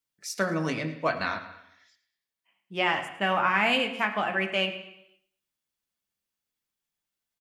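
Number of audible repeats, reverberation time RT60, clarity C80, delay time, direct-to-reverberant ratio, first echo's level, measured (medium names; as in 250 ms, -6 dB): 2, 0.85 s, 11.5 dB, 108 ms, 3.0 dB, -16.5 dB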